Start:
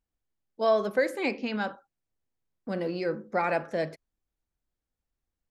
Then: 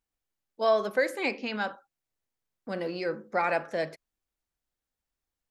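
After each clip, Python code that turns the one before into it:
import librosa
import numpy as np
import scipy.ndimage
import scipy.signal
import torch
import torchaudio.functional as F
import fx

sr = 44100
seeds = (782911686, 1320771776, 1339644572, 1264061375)

y = fx.low_shelf(x, sr, hz=410.0, db=-8.0)
y = y * 10.0 ** (2.0 / 20.0)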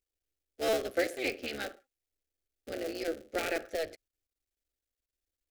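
y = fx.cycle_switch(x, sr, every=3, mode='muted')
y = fx.fixed_phaser(y, sr, hz=410.0, stages=4)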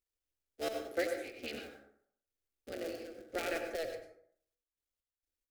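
y = fx.step_gate(x, sr, bpm=66, pattern='xxx.x.x.x.xxx.x', floor_db=-12.0, edge_ms=4.5)
y = fx.rev_plate(y, sr, seeds[0], rt60_s=0.64, hf_ratio=0.5, predelay_ms=80, drr_db=5.0)
y = y * 10.0 ** (-4.5 / 20.0)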